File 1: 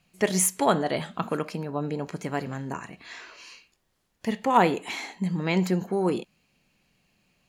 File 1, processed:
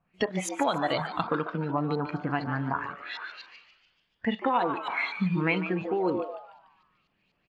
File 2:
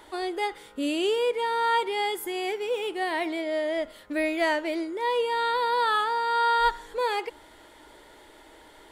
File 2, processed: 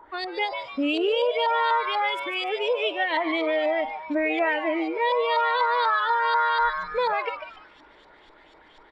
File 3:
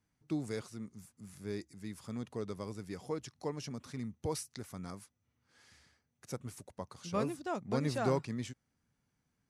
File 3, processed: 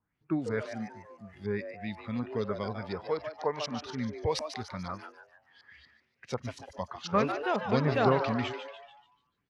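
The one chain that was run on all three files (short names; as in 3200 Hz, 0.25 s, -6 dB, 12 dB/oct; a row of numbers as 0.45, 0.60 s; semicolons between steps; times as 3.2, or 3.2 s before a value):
LFO low-pass saw up 4.1 Hz 960–4500 Hz; compressor 6:1, threshold -26 dBFS; on a send: frequency-shifting echo 0.146 s, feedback 50%, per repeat +150 Hz, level -8.5 dB; on the sum: spectral noise reduction 10 dB; normalise peaks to -12 dBFS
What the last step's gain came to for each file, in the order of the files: +3.5, +5.5, +7.0 dB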